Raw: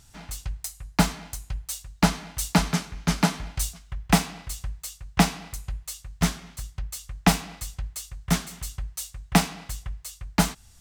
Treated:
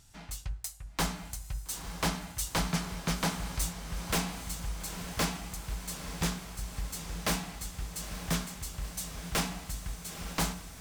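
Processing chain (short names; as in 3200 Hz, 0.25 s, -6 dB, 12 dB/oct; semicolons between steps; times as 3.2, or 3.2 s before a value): de-hum 60.33 Hz, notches 28; wavefolder -18 dBFS; diffused feedback echo 0.909 s, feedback 69%, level -10 dB; gain -4.5 dB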